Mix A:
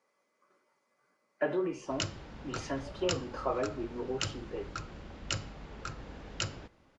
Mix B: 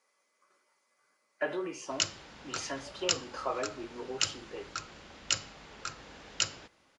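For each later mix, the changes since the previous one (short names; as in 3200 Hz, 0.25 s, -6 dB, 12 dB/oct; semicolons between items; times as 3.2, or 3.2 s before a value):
master: add tilt +3 dB/oct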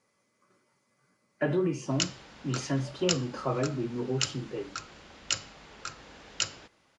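speech: remove HPF 560 Hz 12 dB/oct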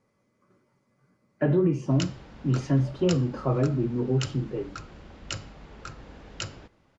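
master: add tilt -3 dB/oct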